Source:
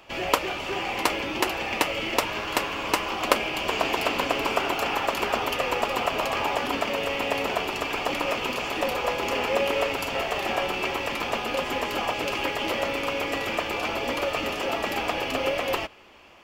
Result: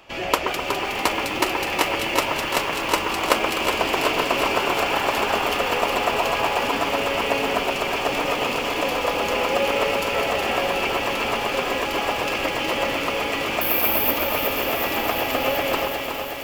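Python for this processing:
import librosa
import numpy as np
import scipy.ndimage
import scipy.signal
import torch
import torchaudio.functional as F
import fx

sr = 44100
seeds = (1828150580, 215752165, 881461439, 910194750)

p1 = x + fx.echo_split(x, sr, split_hz=2100.0, low_ms=127, high_ms=205, feedback_pct=52, wet_db=-6, dry=0)
p2 = fx.resample_bad(p1, sr, factor=3, down='filtered', up='zero_stuff', at=(13.61, 14.11))
p3 = fx.echo_crushed(p2, sr, ms=367, feedback_pct=80, bits=7, wet_db=-7.0)
y = p3 * librosa.db_to_amplitude(1.5)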